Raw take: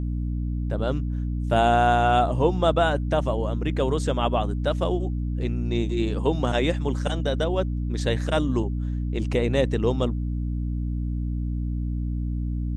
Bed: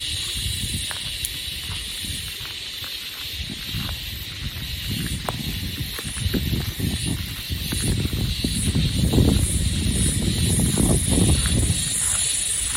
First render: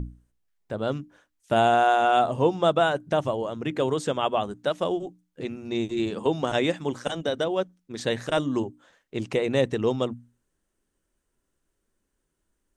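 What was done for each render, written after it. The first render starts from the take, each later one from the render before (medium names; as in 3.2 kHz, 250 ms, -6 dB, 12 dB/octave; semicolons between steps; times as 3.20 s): hum notches 60/120/180/240/300 Hz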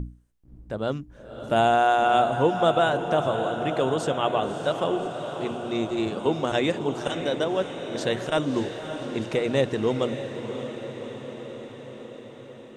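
echo that smears into a reverb 591 ms, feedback 69%, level -9 dB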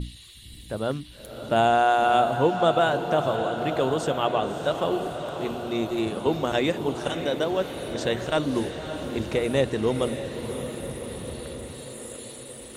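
add bed -21 dB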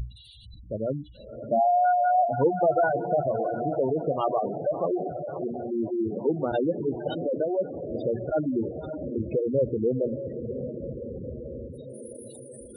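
spectral gate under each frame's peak -10 dB strong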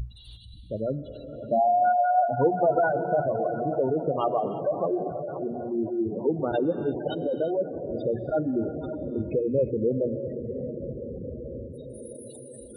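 gated-style reverb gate 380 ms rising, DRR 11 dB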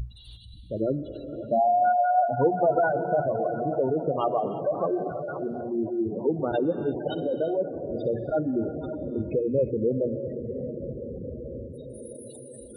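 0.76–1.42 s: small resonant body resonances 340/1600 Hz, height 14 dB, ringing for 60 ms; 4.75–5.61 s: high-order bell 2.7 kHz +14 dB 2.3 oct; 7.08–8.33 s: flutter echo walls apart 10.6 m, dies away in 0.28 s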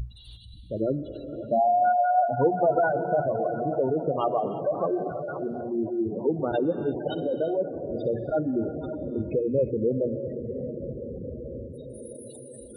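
no audible change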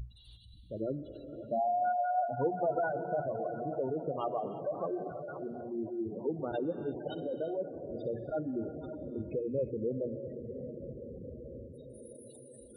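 trim -9 dB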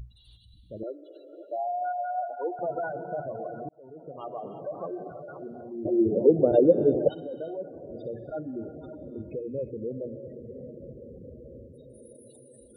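0.83–2.59 s: steep high-pass 310 Hz 72 dB/octave; 3.69–4.58 s: fade in; 5.85–7.09 s: resonant low shelf 760 Hz +11 dB, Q 3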